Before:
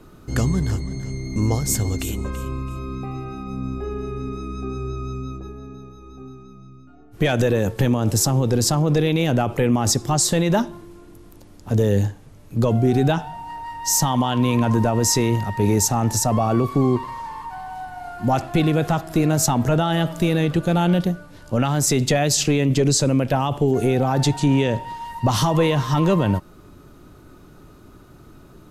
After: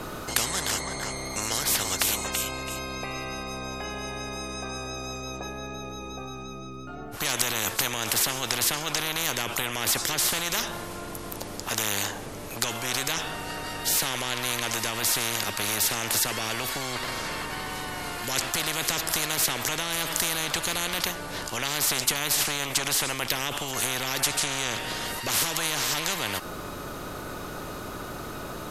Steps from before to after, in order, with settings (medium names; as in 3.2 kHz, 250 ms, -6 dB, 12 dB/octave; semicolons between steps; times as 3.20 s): spectrum-flattening compressor 10:1; trim +6 dB